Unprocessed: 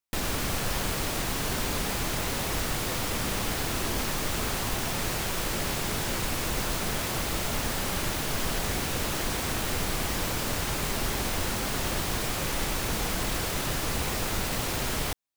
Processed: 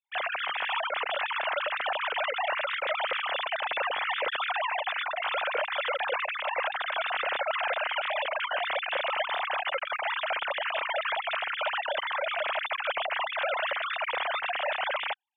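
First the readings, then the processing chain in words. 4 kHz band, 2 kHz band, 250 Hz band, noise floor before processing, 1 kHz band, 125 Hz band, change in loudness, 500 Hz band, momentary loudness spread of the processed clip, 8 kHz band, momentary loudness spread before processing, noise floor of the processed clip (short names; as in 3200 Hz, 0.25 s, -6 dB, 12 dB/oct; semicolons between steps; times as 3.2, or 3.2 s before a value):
-1.0 dB, +5.0 dB, under -25 dB, -31 dBFS, +4.5 dB, under -40 dB, -0.5 dB, +2.0 dB, 1 LU, under -40 dB, 0 LU, -39 dBFS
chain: sine-wave speech; gain -1.5 dB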